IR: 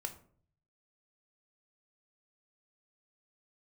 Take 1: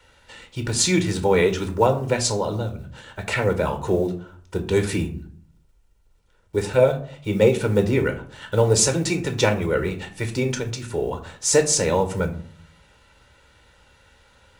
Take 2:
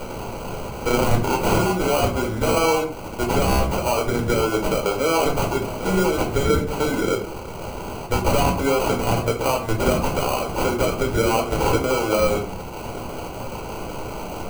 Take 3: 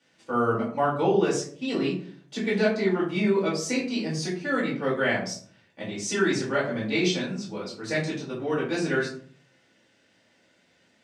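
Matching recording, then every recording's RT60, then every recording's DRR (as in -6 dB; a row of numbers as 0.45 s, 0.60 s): 1; 0.50 s, 0.50 s, 0.50 s; 6.0 dB, 1.0 dB, -7.5 dB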